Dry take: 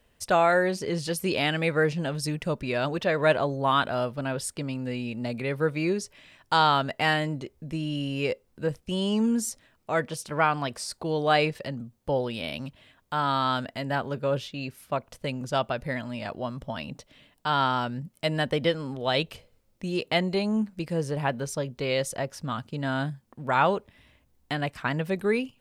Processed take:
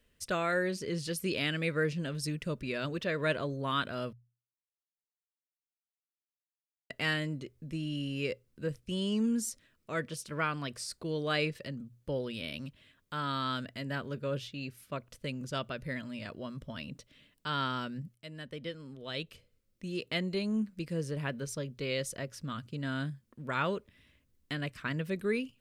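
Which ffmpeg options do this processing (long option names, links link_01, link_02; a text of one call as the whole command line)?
ffmpeg -i in.wav -filter_complex "[0:a]asplit=4[link_01][link_02][link_03][link_04];[link_01]atrim=end=4.13,asetpts=PTS-STARTPTS,afade=type=out:start_time=4.126:duration=0.004:curve=hsin[link_05];[link_02]atrim=start=4.13:end=6.9,asetpts=PTS-STARTPTS,volume=0[link_06];[link_03]atrim=start=6.9:end=18.15,asetpts=PTS-STARTPTS,afade=type=in:duration=0.004:curve=hsin,afade=type=out:start_time=11.246:duration=0.004:curve=hsin:silence=0.199526[link_07];[link_04]atrim=start=18.15,asetpts=PTS-STARTPTS,afade=type=in:duration=2.42:silence=0.199526[link_08];[link_05][link_06][link_07][link_08]concat=n=4:v=0:a=1,equalizer=frequency=800:width=2.4:gain=-15,bandreject=frequency=60:width_type=h:width=6,bandreject=frequency=120:width_type=h:width=6,volume=-5dB" out.wav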